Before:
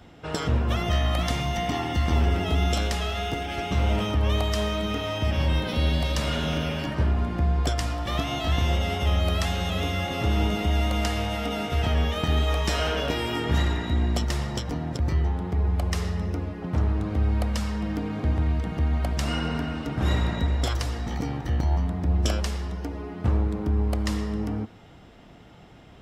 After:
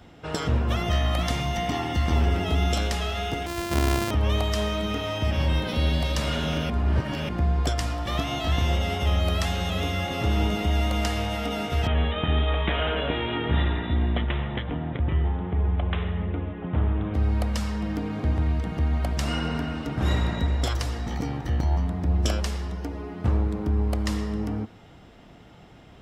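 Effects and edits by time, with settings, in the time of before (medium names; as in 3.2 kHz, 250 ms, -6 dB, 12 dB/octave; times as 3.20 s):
3.46–4.11 s: sorted samples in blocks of 128 samples
6.70–7.29 s: reverse
11.87–17.14 s: careless resampling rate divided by 6×, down none, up filtered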